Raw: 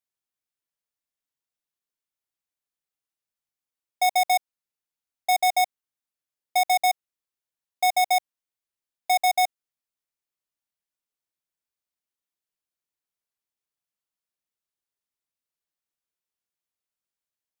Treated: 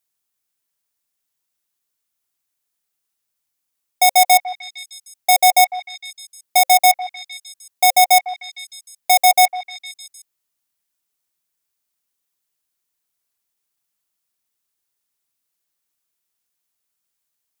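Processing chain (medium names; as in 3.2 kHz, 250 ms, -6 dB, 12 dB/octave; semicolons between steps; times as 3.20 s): treble shelf 5.3 kHz +8.5 dB; band-stop 530 Hz, Q 15; repeats whose band climbs or falls 153 ms, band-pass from 1.1 kHz, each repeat 0.7 oct, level -8 dB; trim +7 dB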